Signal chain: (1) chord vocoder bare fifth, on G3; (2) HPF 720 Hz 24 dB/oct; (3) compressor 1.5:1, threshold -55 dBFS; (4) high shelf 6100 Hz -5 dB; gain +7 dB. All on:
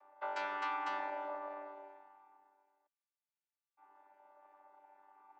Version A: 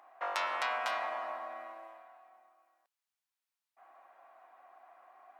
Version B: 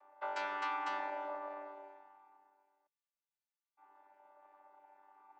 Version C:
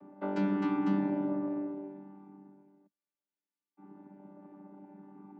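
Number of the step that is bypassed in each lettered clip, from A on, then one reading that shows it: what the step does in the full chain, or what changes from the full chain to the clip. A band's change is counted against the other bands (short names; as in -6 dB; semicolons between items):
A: 1, 250 Hz band -10.0 dB; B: 4, momentary loudness spread change -2 LU; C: 2, 250 Hz band +31.0 dB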